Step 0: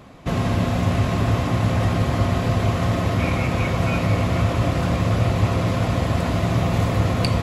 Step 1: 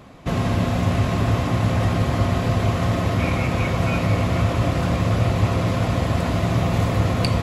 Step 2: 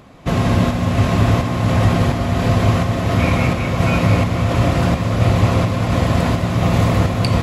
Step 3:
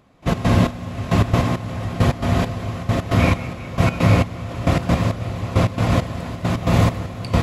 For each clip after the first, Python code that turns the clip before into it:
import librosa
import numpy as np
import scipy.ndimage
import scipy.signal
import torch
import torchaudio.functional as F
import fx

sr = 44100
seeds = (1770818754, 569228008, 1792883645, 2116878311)

y1 = x
y2 = fx.volume_shaper(y1, sr, bpm=85, per_beat=1, depth_db=-5, release_ms=271.0, shape='slow start')
y2 = y2 + 10.0 ** (-11.0 / 20.0) * np.pad(y2, (int(208 * sr / 1000.0), 0))[:len(y2)]
y2 = F.gain(torch.from_numpy(y2), 5.0).numpy()
y3 = fx.step_gate(y2, sr, bpm=135, pattern='..x.xx..', floor_db=-12.0, edge_ms=4.5)